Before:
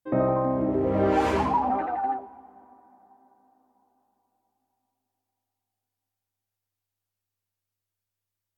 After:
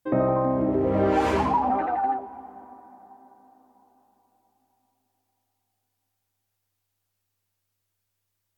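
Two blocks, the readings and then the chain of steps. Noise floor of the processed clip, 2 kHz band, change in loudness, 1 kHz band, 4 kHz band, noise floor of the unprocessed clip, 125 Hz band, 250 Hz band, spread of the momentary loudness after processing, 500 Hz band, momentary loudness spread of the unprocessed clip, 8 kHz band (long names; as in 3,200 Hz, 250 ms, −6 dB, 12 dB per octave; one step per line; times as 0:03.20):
−79 dBFS, +1.5 dB, +1.5 dB, +1.5 dB, +1.0 dB, below −85 dBFS, +1.0 dB, +1.5 dB, 9 LU, +1.0 dB, 6 LU, can't be measured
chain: downward compressor 1.5 to 1, threshold −38 dBFS, peak gain reduction 7.5 dB
level +7.5 dB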